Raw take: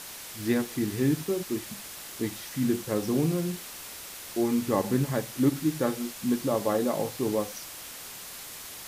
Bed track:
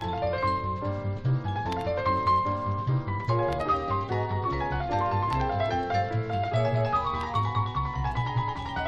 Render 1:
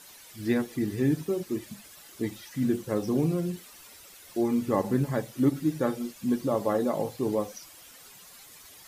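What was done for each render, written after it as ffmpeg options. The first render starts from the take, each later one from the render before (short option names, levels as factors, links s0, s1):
-af "afftdn=nr=12:nf=-42"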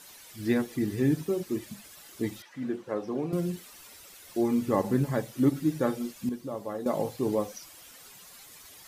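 -filter_complex "[0:a]asettb=1/sr,asplit=3[s0][s1][s2];[s0]atrim=end=2.424[s3];[s1]atrim=start=2.42:end=3.33,asetpts=PTS-STARTPTS,afade=t=in:d=0.004:c=qsin,afade=t=out:st=0.906:d=0.004:c=qsin,bandpass=f=920:t=q:w=0.6[s4];[s2]atrim=start=3.326[s5];[s3][s4]acrossfade=d=0.004:c1=hsin:c2=qsin[s6];[s6][s5]acrossfade=d=0.004:c1=qsin:c2=hsin,asplit=3[s7][s8][s9];[s7]atrim=end=6.292[s10];[s8]atrim=start=6.288:end=6.862,asetpts=PTS-STARTPTS,volume=0.355[s11];[s9]atrim=start=6.858[s12];[s10][s11]acrossfade=d=0.004:c1=hsin:c2=hsin[s13];[s13][s12]acrossfade=d=0.004:c1=hsin:c2=hsin"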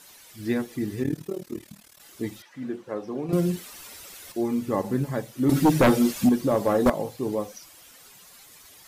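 -filter_complex "[0:a]asettb=1/sr,asplit=3[s0][s1][s2];[s0]atrim=end=1.034[s3];[s1]atrim=start=1.03:end=2,asetpts=PTS-STARTPTS,afade=t=in:d=0.004:c=qsin,afade=t=out:st=0.966:d=0.004:c=qsin,tremolo=f=38:d=0.889[s4];[s2]atrim=start=1.996[s5];[s3][s4]acrossfade=d=0.004:c1=hsin:c2=qsin[s6];[s6][s5]acrossfade=d=0.004:c1=qsin:c2=hsin,asettb=1/sr,asplit=3[s7][s8][s9];[s7]atrim=end=5.494[s10];[s8]atrim=start=5.49:end=6.9,asetpts=PTS-STARTPTS,afade=t=in:d=0.004:c=qsin,afade=t=out:st=1.406:d=0.004:c=qsin,aeval=exprs='0.237*sin(PI/2*3.16*val(0)/0.237)':c=same[s11];[s9]atrim=start=6.896[s12];[s10][s11]acrossfade=d=0.004:c1=hsin:c2=qsin[s13];[s13][s12]acrossfade=d=0.004:c1=qsin:c2=hsin,asplit=3[s14][s15][s16];[s14]atrim=end=3.292[s17];[s15]atrim=start=3.288:end=4.322,asetpts=PTS-STARTPTS,volume=2.11[s18];[s16]atrim=start=4.318[s19];[s17][s18]acrossfade=d=0.004:c1=hsin:c2=hsin[s20];[s20][s19]acrossfade=d=0.004:c1=hsin:c2=hsin"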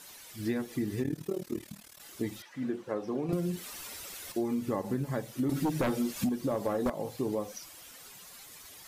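-af "acompressor=threshold=0.0398:ratio=6"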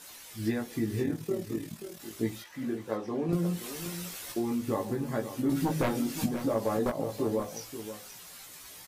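-filter_complex "[0:a]asplit=2[s0][s1];[s1]adelay=18,volume=0.708[s2];[s0][s2]amix=inputs=2:normalize=0,aecho=1:1:531:0.282"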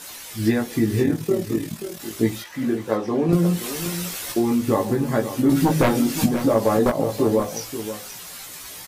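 -af "volume=3.35"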